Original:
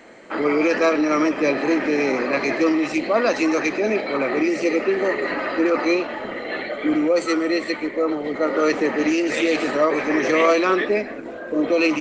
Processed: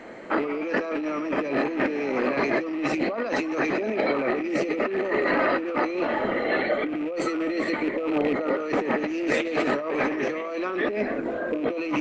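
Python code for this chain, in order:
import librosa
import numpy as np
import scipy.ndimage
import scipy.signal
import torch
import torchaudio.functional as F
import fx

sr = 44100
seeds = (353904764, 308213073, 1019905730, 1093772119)

y = fx.rattle_buzz(x, sr, strikes_db=-31.0, level_db=-22.0)
y = fx.high_shelf(y, sr, hz=3400.0, db=-11.5)
y = fx.over_compress(y, sr, threshold_db=-26.0, ratio=-1.0)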